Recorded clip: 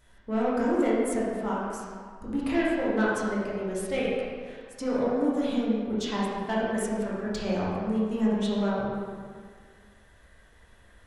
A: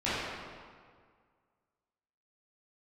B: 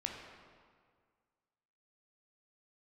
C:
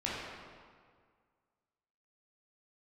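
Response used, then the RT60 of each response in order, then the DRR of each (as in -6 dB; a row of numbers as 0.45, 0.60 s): C; 1.9, 1.9, 1.9 s; -13.5, 0.5, -7.5 dB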